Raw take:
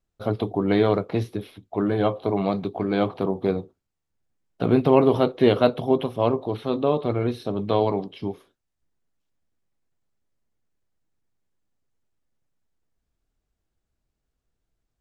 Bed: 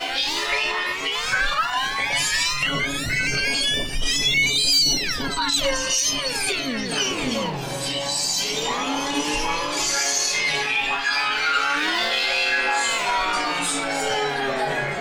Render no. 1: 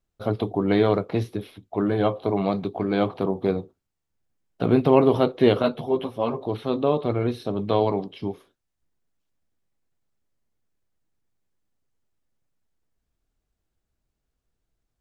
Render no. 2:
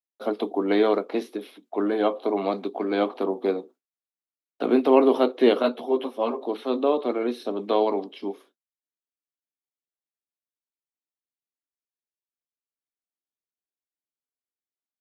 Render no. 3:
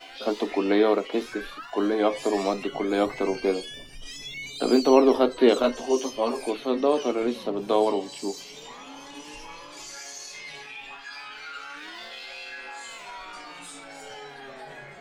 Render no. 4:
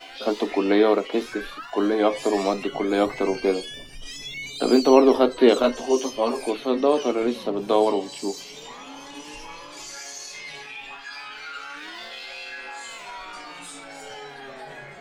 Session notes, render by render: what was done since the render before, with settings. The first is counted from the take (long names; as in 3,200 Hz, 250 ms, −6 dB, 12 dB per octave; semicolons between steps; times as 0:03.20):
0:05.62–0:06.41: string-ensemble chorus
noise gate with hold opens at −44 dBFS; Butterworth high-pass 230 Hz 48 dB per octave
mix in bed −18 dB
level +2.5 dB